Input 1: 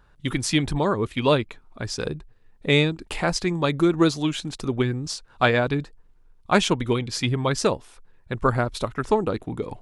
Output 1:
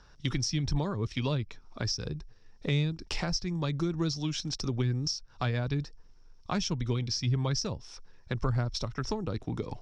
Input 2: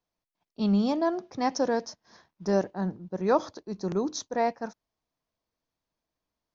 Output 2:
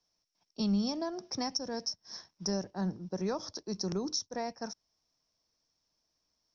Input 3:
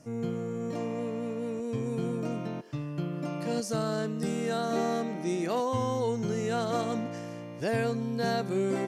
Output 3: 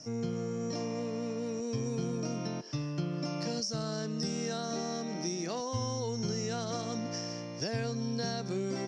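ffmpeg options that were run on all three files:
-filter_complex "[0:a]lowpass=f=5500:t=q:w=13,acrossover=split=160[s0][s1];[s1]acompressor=threshold=0.0224:ratio=6[s2];[s0][s2]amix=inputs=2:normalize=0"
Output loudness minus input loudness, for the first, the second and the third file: -8.0 LU, -6.5 LU, -3.5 LU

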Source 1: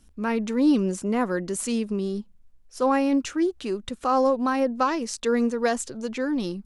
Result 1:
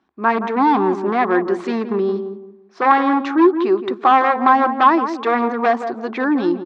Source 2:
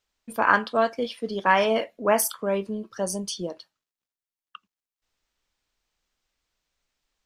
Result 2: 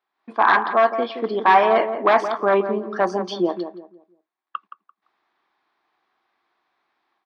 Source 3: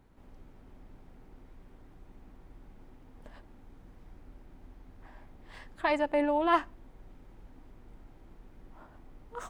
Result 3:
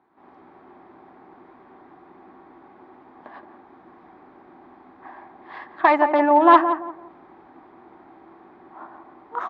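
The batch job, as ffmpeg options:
-filter_complex "[0:a]dynaudnorm=f=130:g=3:m=3.16,aeval=exprs='0.316*(abs(mod(val(0)/0.316+3,4)-2)-1)':c=same,highpass=300,equalizer=f=350:t=q:w=4:g=8,equalizer=f=510:t=q:w=4:g=-7,equalizer=f=770:t=q:w=4:g=9,equalizer=f=1100:t=q:w=4:g=9,equalizer=f=1700:t=q:w=4:g=3,equalizer=f=2900:t=q:w=4:g=-8,lowpass=f=3500:w=0.5412,lowpass=f=3500:w=1.3066,asplit=2[s0][s1];[s1]adelay=171,lowpass=f=1000:p=1,volume=0.422,asplit=2[s2][s3];[s3]adelay=171,lowpass=f=1000:p=1,volume=0.32,asplit=2[s4][s5];[s5]adelay=171,lowpass=f=1000:p=1,volume=0.32,asplit=2[s6][s7];[s7]adelay=171,lowpass=f=1000:p=1,volume=0.32[s8];[s2][s4][s6][s8]amix=inputs=4:normalize=0[s9];[s0][s9]amix=inputs=2:normalize=0,volume=0.891"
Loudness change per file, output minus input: +8.0 LU, +5.5 LU, +11.5 LU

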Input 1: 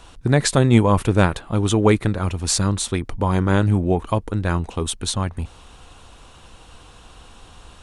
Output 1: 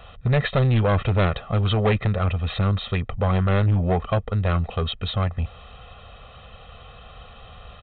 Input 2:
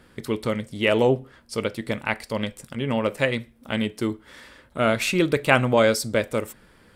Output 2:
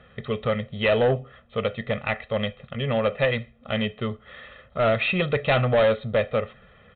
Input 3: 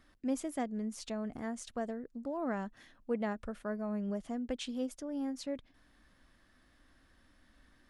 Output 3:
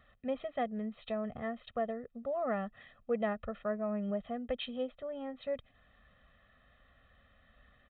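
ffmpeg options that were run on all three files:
-af "highpass=f=54:p=1,aecho=1:1:1.6:0.96,aresample=8000,asoftclip=type=tanh:threshold=0.178,aresample=44100"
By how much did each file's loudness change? -3.0 LU, -1.0 LU, +1.0 LU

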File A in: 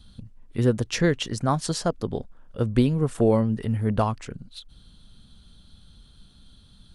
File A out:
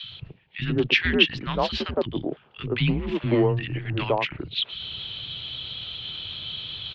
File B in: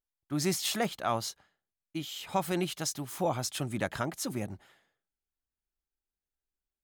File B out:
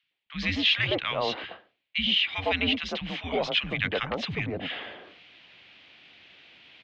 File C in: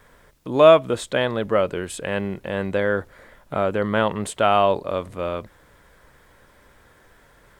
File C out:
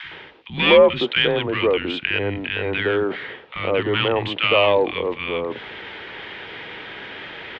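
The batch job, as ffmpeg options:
-filter_complex "[0:a]asplit=2[s0][s1];[s1]asoftclip=type=hard:threshold=0.15,volume=0.668[s2];[s0][s2]amix=inputs=2:normalize=0,highpass=f=130:p=1,acrossover=split=300|1300[s3][s4][s5];[s3]adelay=30[s6];[s4]adelay=110[s7];[s6][s7][s5]amix=inputs=3:normalize=0,areverse,acompressor=mode=upward:threshold=0.0794:ratio=2.5,areverse,aexciter=amount=4.6:drive=4.6:freq=2100,highpass=f=200:t=q:w=0.5412,highpass=f=200:t=q:w=1.307,lowpass=f=3300:t=q:w=0.5176,lowpass=f=3300:t=q:w=0.7071,lowpass=f=3300:t=q:w=1.932,afreqshift=-100,volume=0.891"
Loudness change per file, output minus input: -1.0 LU, +6.0 LU, +2.0 LU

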